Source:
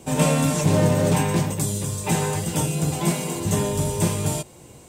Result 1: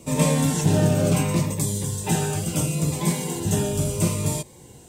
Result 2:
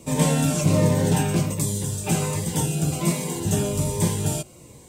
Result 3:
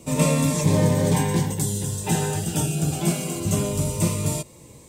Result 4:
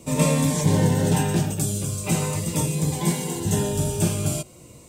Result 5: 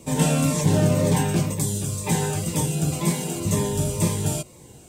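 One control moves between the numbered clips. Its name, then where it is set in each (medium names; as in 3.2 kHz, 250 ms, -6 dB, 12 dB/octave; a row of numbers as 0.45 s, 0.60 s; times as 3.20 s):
Shepard-style phaser, rate: 0.72 Hz, 1.3 Hz, 0.24 Hz, 0.42 Hz, 2 Hz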